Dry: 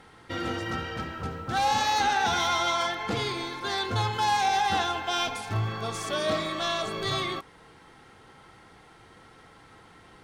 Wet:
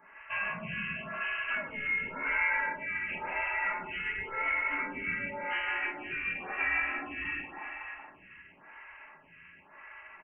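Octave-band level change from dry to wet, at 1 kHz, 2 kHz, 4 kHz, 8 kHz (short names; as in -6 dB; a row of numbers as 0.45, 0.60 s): -12.0 dB, +2.5 dB, -17.5 dB, under -40 dB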